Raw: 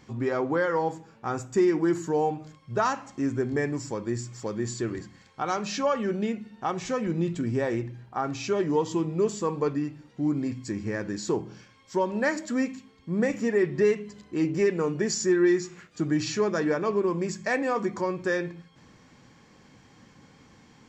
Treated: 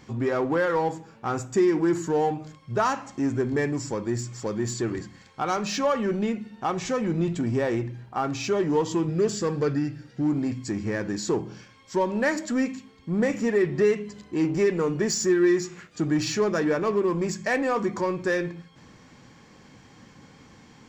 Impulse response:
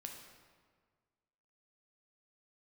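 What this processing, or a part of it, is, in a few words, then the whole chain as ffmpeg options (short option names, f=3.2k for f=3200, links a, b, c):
parallel distortion: -filter_complex "[0:a]asplit=2[a][b];[b]asoftclip=type=hard:threshold=-30.5dB,volume=-5.5dB[c];[a][c]amix=inputs=2:normalize=0,asettb=1/sr,asplit=3[d][e][f];[d]atrim=end=9.084[g];[e]atrim=start=9.08:end=10.22,asetpts=PTS-STARTPTS,afade=t=in:d=0.004:c=qsin,afade=t=out:st=1.136:d=0.004:c=qsin,equalizer=f=125:t=o:w=0.33:g=8,equalizer=f=1k:t=o:w=0.33:g=-10,equalizer=f=1.6k:t=o:w=0.33:g=8,equalizer=f=5k:t=o:w=0.33:g=7[h];[f]atrim=start=10.216[i];[g][h]acrossfade=d=0.004:c1=hsin:c2=qsin[j];[j][i]acrossfade=d=0.004:c1=qsin:c2=hsin"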